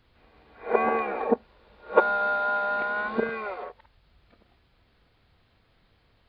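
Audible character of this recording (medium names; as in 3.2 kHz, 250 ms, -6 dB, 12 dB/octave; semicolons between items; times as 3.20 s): noise floor -65 dBFS; spectral tilt +2.0 dB/octave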